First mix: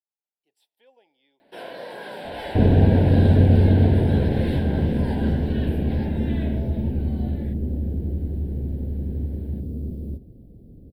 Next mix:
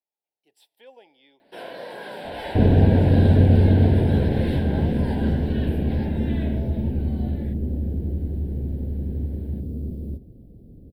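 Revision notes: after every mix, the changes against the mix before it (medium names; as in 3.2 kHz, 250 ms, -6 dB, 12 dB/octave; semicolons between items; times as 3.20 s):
speech +9.5 dB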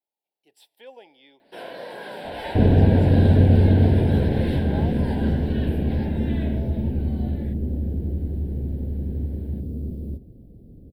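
speech +4.0 dB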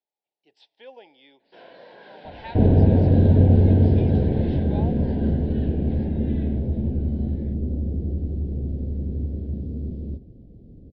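first sound -10.0 dB; master: add steep low-pass 5.5 kHz 36 dB/octave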